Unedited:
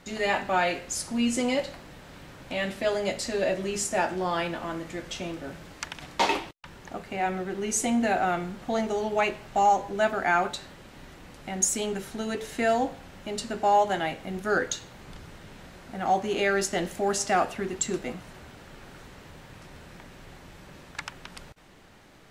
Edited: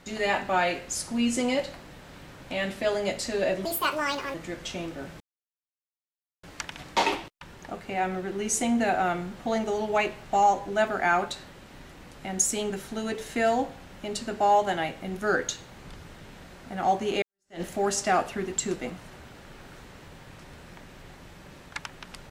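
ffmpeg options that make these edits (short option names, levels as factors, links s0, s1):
-filter_complex "[0:a]asplit=5[s0][s1][s2][s3][s4];[s0]atrim=end=3.654[s5];[s1]atrim=start=3.65:end=4.8,asetpts=PTS-STARTPTS,asetrate=73206,aresample=44100,atrim=end_sample=30551,asetpts=PTS-STARTPTS[s6];[s2]atrim=start=4.796:end=5.66,asetpts=PTS-STARTPTS,afade=t=out:st=0.86:d=0.004:c=hsin,apad=pad_dur=1.23[s7];[s3]atrim=start=5.66:end=16.45,asetpts=PTS-STARTPTS,afade=t=in:d=0.004:c=hsin,afade=t=out:st=10.786:d=0.004:c=hsin[s8];[s4]atrim=start=16.45,asetpts=PTS-STARTPTS,afade=t=in:d=0.39:c=exp[s9];[s5][s6]acrossfade=d=0.004:c1=hsin:c2=hsin[s10];[s7][s8][s9]concat=n=3:v=0:a=1[s11];[s10][s11]acrossfade=d=0.004:c1=hsin:c2=hsin"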